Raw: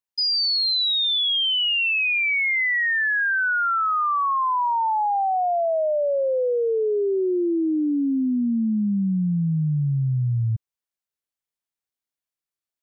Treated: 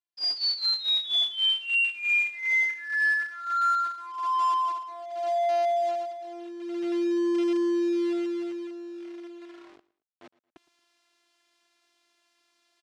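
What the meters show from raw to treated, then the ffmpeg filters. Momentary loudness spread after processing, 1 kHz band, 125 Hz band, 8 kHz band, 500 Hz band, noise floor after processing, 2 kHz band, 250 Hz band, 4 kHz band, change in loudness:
15 LU, -5.5 dB, under -40 dB, n/a, -6.0 dB, -79 dBFS, -5.0 dB, -6.0 dB, -5.0 dB, -4.5 dB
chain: -af "highshelf=f=2.6k:g=5,areverse,acompressor=mode=upward:threshold=-33dB:ratio=2.5,areverse,afftfilt=real='hypot(re,im)*cos(PI*b)':imag='0':win_size=512:overlap=0.75,acrusher=bits=3:mode=log:mix=0:aa=0.000001,highpass=210,lowpass=4.1k,aecho=1:1:113|226:0.0891|0.0285,volume=-2dB"

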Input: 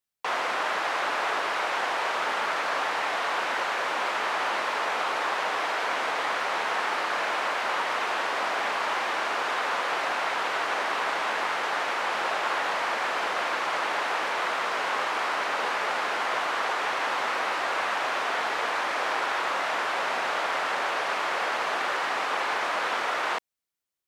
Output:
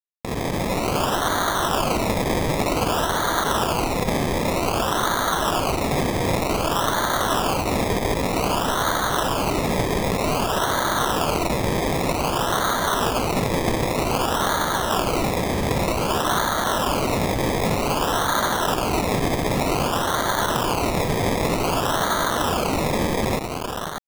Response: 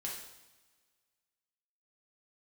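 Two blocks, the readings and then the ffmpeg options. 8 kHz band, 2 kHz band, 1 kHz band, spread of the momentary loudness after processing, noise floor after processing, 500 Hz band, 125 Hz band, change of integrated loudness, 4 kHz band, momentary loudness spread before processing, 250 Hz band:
+13.0 dB, -1.0 dB, +3.5 dB, 2 LU, -26 dBFS, +9.0 dB, n/a, +5.0 dB, +5.5 dB, 0 LU, +19.5 dB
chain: -filter_complex "[0:a]dynaudnorm=f=130:g=5:m=8dB,aeval=exprs='val(0)*sin(2*PI*290*n/s)':c=same,aecho=1:1:3:0.46,asplit=2[a][b];[b]aecho=0:1:271|599:0.133|0.562[c];[a][c]amix=inputs=2:normalize=0,adynamicsmooth=sensitivity=6:basefreq=3.2k,acrusher=bits=3:mix=0:aa=0.000001,highpass=770,lowpass=6.1k,acrusher=samples=24:mix=1:aa=0.000001:lfo=1:lforange=14.4:lforate=0.53"

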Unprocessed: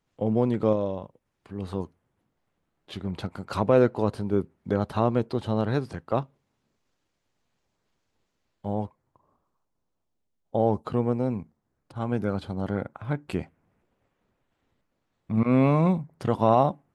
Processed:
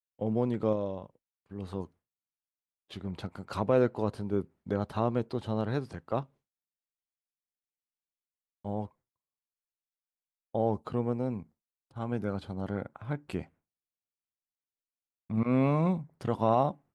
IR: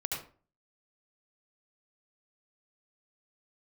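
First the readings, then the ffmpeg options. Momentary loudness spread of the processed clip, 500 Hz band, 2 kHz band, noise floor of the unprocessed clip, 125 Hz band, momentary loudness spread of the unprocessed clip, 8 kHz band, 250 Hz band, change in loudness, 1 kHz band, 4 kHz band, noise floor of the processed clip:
15 LU, -5.5 dB, -5.5 dB, -78 dBFS, -5.5 dB, 15 LU, n/a, -5.5 dB, -5.5 dB, -5.5 dB, -5.5 dB, under -85 dBFS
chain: -af "agate=range=-33dB:threshold=-45dB:ratio=3:detection=peak,volume=-5.5dB"

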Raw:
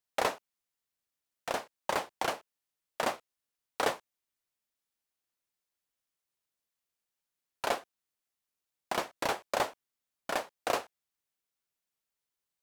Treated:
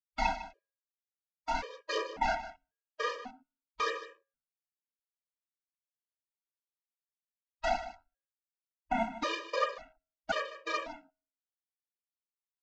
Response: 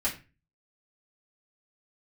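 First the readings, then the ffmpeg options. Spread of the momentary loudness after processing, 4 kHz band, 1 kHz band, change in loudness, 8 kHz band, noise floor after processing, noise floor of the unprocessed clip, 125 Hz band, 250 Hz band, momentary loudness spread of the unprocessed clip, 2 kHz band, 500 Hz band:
16 LU, -1.5 dB, +0.5 dB, -0.5 dB, -8.0 dB, under -85 dBFS, under -85 dBFS, n/a, +1.5 dB, 13 LU, +0.5 dB, -2.0 dB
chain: -filter_complex "[0:a]aresample=16000,acrusher=bits=5:mix=0:aa=0.000001,aresample=44100,aecho=1:1:4.2:0.87,aphaser=in_gain=1:out_gain=1:delay=4.4:decay=0.72:speed=0.5:type=triangular,acompressor=threshold=-27dB:ratio=6,equalizer=f=350:w=1.2:g=3,bandreject=f=91.21:t=h:w=4,bandreject=f=182.42:t=h:w=4,bandreject=f=273.63:t=h:w=4,bandreject=f=364.84:t=h:w=4,bandreject=f=456.05:t=h:w=4,bandreject=f=547.26:t=h:w=4,bandreject=f=638.47:t=h:w=4,bandreject=f=729.68:t=h:w=4,bandreject=f=820.89:t=h:w=4,bandreject=f=912.1:t=h:w=4,bandreject=f=1.00331k:t=h:w=4,bandreject=f=1.09452k:t=h:w=4,bandreject=f=1.18573k:t=h:w=4,bandreject=f=1.27694k:t=h:w=4,bandreject=f=1.36815k:t=h:w=4,bandreject=f=1.45936k:t=h:w=4,bandreject=f=1.55057k:t=h:w=4,bandreject=f=1.64178k:t=h:w=4,bandreject=f=1.73299k:t=h:w=4[a];[1:a]atrim=start_sample=2205[b];[a][b]afir=irnorm=-1:irlink=0,afwtdn=0.0158,aecho=1:1:153:0.2,afftfilt=real='re*gt(sin(2*PI*0.92*pts/sr)*(1-2*mod(floor(b*sr/1024/320),2)),0)':imag='im*gt(sin(2*PI*0.92*pts/sr)*(1-2*mod(floor(b*sr/1024/320),2)),0)':win_size=1024:overlap=0.75,volume=-4.5dB"

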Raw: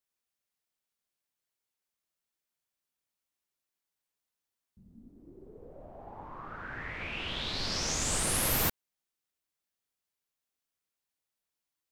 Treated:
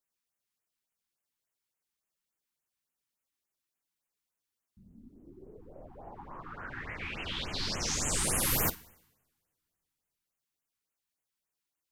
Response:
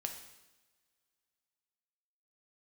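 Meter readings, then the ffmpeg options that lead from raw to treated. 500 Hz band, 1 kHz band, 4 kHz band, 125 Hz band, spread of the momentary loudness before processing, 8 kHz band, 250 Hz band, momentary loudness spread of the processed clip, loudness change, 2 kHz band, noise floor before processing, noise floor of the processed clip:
-1.0 dB, -1.0 dB, -1.5 dB, 0.0 dB, 20 LU, 0.0 dB, 0.0 dB, 21 LU, -0.5 dB, -1.0 dB, under -85 dBFS, under -85 dBFS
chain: -filter_complex "[0:a]flanger=delay=4.7:depth=7.7:regen=-78:speed=0.48:shape=triangular,asplit=2[a][b];[1:a]atrim=start_sample=2205,adelay=51[c];[b][c]afir=irnorm=-1:irlink=0,volume=-16dB[d];[a][d]amix=inputs=2:normalize=0,afftfilt=real='re*(1-between(b*sr/1024,510*pow(4600/510,0.5+0.5*sin(2*PI*3.5*pts/sr))/1.41,510*pow(4600/510,0.5+0.5*sin(2*PI*3.5*pts/sr))*1.41))':imag='im*(1-between(b*sr/1024,510*pow(4600/510,0.5+0.5*sin(2*PI*3.5*pts/sr))/1.41,510*pow(4600/510,0.5+0.5*sin(2*PI*3.5*pts/sr))*1.41))':win_size=1024:overlap=0.75,volume=4.5dB"

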